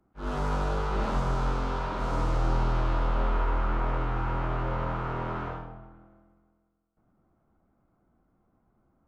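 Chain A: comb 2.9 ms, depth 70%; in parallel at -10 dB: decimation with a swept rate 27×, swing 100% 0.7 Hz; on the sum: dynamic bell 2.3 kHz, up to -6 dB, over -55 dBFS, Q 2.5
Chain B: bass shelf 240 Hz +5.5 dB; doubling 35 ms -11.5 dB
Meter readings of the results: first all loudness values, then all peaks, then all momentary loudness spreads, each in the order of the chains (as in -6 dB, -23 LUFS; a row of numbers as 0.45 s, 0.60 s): -26.0 LUFS, -28.0 LUFS; -10.0 dBFS, -14.0 dBFS; 7 LU, 7 LU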